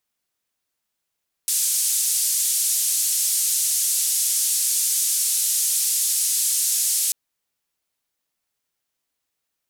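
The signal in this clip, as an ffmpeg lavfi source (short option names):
-f lavfi -i "anoisesrc=c=white:d=5.64:r=44100:seed=1,highpass=f=7300,lowpass=f=10000,volume=-8.2dB"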